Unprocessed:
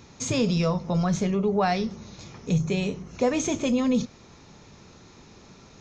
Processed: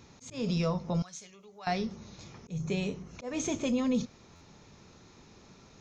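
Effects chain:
volume swells 202 ms
0:01.02–0:01.67: first-order pre-emphasis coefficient 0.97
buffer that repeats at 0:04.35, samples 512, times 4
level −5.5 dB

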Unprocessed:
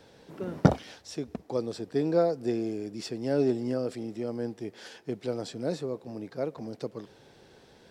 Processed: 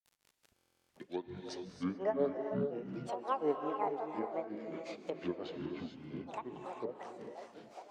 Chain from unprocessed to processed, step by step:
turntable start at the beginning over 2.61 s
meter weighting curve A
delay with a band-pass on its return 474 ms, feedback 63%, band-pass 420 Hz, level −10 dB
noise gate with hold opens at −55 dBFS
high-shelf EQ 4,900 Hz −7 dB
surface crackle 70 per second −47 dBFS
granular cloud 184 ms, grains 5.6 per second, spray 38 ms, pitch spread up and down by 12 semitones
reverb whose tail is shaped and stops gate 460 ms rising, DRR 4.5 dB
treble cut that deepens with the level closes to 1,800 Hz, closed at −35.5 dBFS
buffer that repeats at 0:00.55, samples 1,024, times 14
level +1 dB

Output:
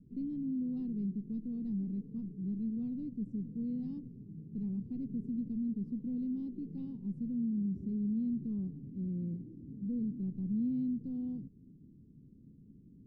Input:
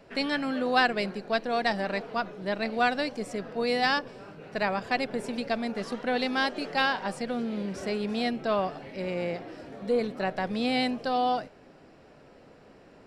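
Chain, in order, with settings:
inverse Chebyshev low-pass filter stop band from 600 Hz, stop band 50 dB
low-shelf EQ 80 Hz −7.5 dB
in parallel at −1 dB: brickwall limiter −40.5 dBFS, peak gain reduction 11.5 dB

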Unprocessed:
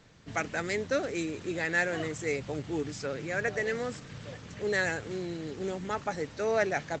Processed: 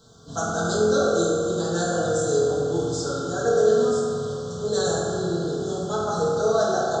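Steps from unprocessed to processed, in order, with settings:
elliptic band-stop filter 1,400–3,500 Hz, stop band 80 dB
high-shelf EQ 3,200 Hz +9.5 dB
convolution reverb RT60 2.6 s, pre-delay 3 ms, DRR −8 dB

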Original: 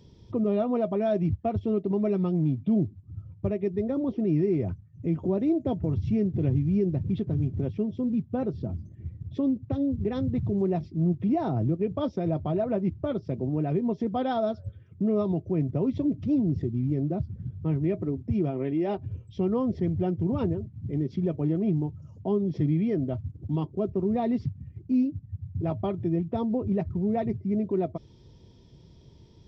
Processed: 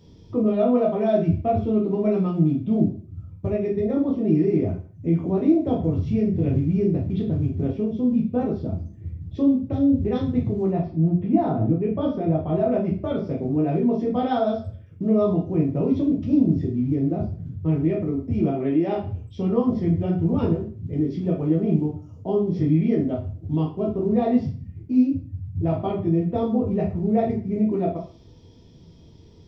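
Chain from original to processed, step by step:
0:10.71–0:12.56: high-frequency loss of the air 210 metres
convolution reverb RT60 0.40 s, pre-delay 5 ms, DRR −2.5 dB

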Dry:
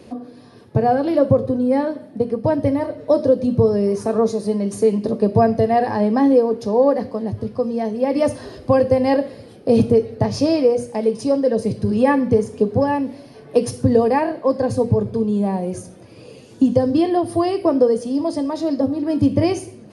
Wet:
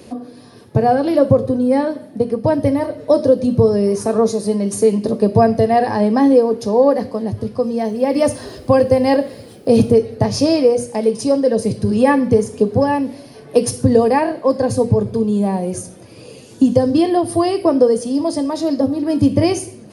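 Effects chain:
high-shelf EQ 6,300 Hz +10 dB
0:07.79–0:09.98: bit-depth reduction 10 bits, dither none
level +2.5 dB

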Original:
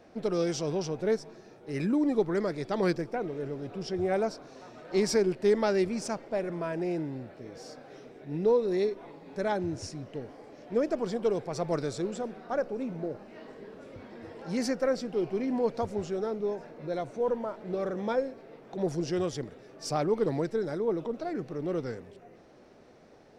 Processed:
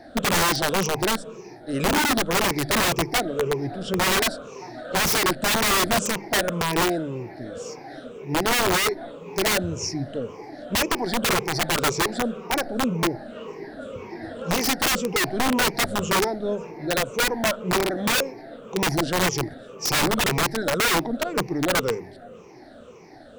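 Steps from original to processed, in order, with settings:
rippled gain that drifts along the octave scale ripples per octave 0.77, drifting −1.9 Hz, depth 17 dB
mains-hum notches 50/100/150/200 Hz
wrap-around overflow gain 23 dB
level +7 dB

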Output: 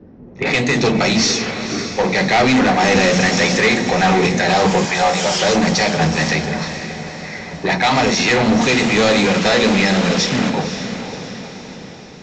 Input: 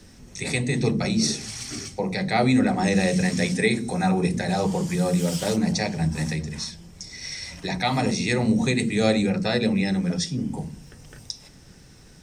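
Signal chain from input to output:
low-pass that shuts in the quiet parts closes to 330 Hz, open at −20 dBFS
0:04.85–0:05.41: low shelf with overshoot 500 Hz −13 dB, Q 3
in parallel at −1 dB: downward compressor 6 to 1, threshold −30 dBFS, peak gain reduction 14 dB
on the sum: harmonic generator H 7 −24 dB, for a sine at −7 dBFS
0:08.61–0:10.50: bit-depth reduction 6 bits, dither none
mid-hump overdrive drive 26 dB, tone 4,600 Hz, clips at −6.5 dBFS
feedback delay with all-pass diffusion 530 ms, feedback 53%, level −10 dB
Ogg Vorbis 64 kbit/s 16,000 Hz

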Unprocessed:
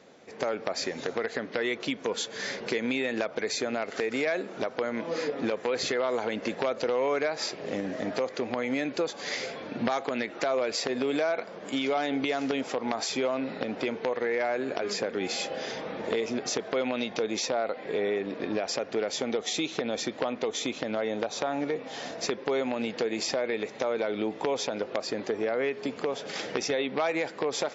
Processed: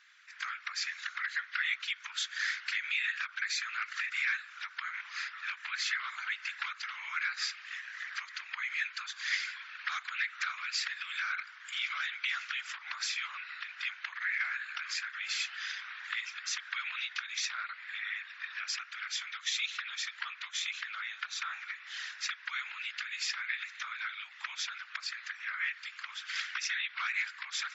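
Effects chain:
Butterworth high-pass 1,400 Hz 48 dB per octave
spectral tilt −4 dB per octave
random phases in short frames
level +6.5 dB

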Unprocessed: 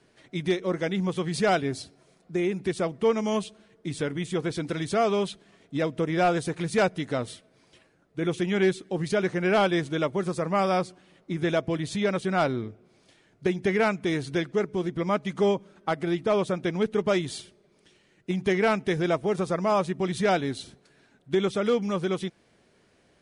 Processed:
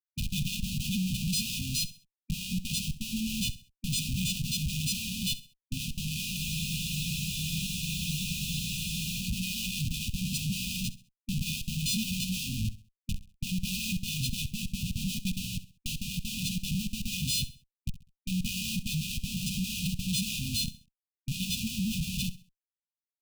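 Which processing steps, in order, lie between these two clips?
every partial snapped to a pitch grid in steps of 3 semitones
noise gate −51 dBFS, range −18 dB
high-pass filter 66 Hz 6 dB per octave
bass and treble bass −3 dB, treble −4 dB
upward compression, threshold −28 dBFS
comparator with hysteresis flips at −33.5 dBFS
linear-phase brick-wall band-stop 250–2,400 Hz
repeating echo 66 ms, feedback 33%, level −16 dB
frozen spectrum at 0:06.39, 2.82 s

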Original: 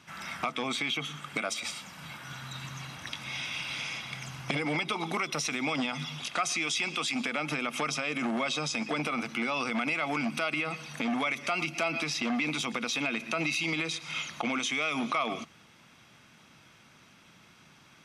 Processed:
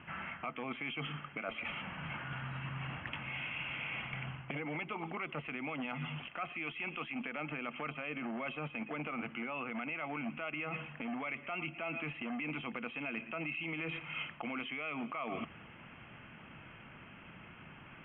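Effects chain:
Chebyshev low-pass filter 3,100 Hz, order 8
low-shelf EQ 61 Hz +12 dB
reversed playback
downward compressor 6 to 1, threshold −43 dBFS, peak gain reduction 16.5 dB
reversed playback
level +5 dB

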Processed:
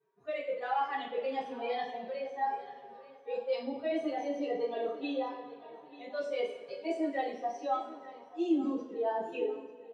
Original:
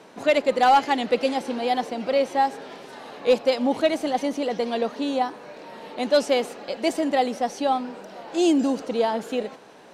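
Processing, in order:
spectral dynamics exaggerated over time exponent 2
low-pass filter 2,400 Hz 12 dB per octave
low shelf with overshoot 280 Hz −9.5 dB, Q 1.5
notch filter 760 Hz, Q 18
hum removal 72.58 Hz, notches 5
reversed playback
downward compressor 10 to 1, threshold −30 dBFS, peak gain reduction 17 dB
reversed playback
brickwall limiter −29.5 dBFS, peak gain reduction 7.5 dB
on a send: repeating echo 888 ms, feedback 38%, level −17.5 dB
on the sum: coupled-rooms reverb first 0.42 s, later 2 s, from −17 dB, DRR −9.5 dB
level −5 dB

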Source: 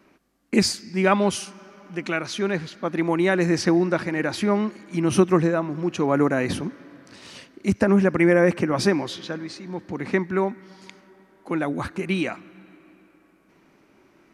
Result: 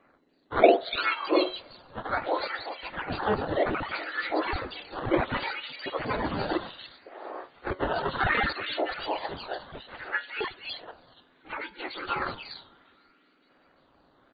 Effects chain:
frequency axis turned over on the octave scale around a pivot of 1,800 Hz
high-shelf EQ 3,700 Hz −9.5 dB
0:08.44–0:09.11: downward compressor, threshold −29 dBFS, peak gain reduction 8 dB
flanger 0.22 Hz, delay 9.5 ms, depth 2.1 ms, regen +69%
sample-and-hold swept by an LFO 11×, swing 160% 0.66 Hz
0:03.13–0:03.66: high-frequency loss of the air 360 metres
multiband delay without the direct sound lows, highs 290 ms, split 2,900 Hz
level +8.5 dB
MP2 48 kbit/s 16,000 Hz

